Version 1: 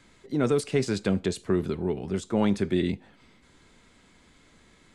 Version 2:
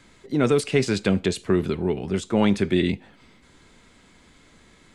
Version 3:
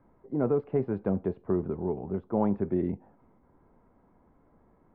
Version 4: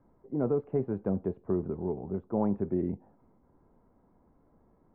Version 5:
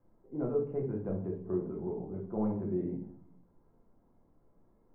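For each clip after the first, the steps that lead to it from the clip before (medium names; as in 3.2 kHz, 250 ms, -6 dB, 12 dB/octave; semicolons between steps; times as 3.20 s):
dynamic bell 2.6 kHz, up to +5 dB, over -51 dBFS, Q 1.3; trim +4 dB
four-pole ladder low-pass 1.1 kHz, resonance 35%
low-pass 1.1 kHz 6 dB/octave; trim -1.5 dB
simulated room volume 82 m³, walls mixed, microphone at 0.82 m; trim -8.5 dB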